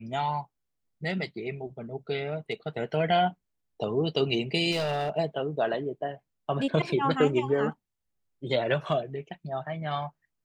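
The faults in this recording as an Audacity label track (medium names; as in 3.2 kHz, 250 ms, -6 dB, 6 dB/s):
4.710000	5.180000	clipped -24.5 dBFS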